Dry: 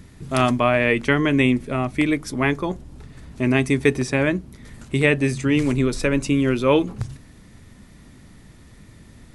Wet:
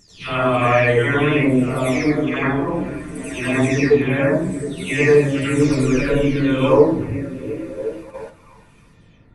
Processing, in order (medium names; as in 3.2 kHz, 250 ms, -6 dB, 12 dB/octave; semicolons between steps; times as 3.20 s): delay that grows with frequency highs early, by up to 513 ms; wow and flutter 18 cents; on a send: repeats whose band climbs or falls 356 ms, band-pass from 170 Hz, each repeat 0.7 oct, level -6.5 dB; on the sum: plate-style reverb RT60 0.52 s, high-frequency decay 0.5×, pre-delay 75 ms, DRR -7.5 dB; gate -30 dBFS, range -7 dB; trim -4 dB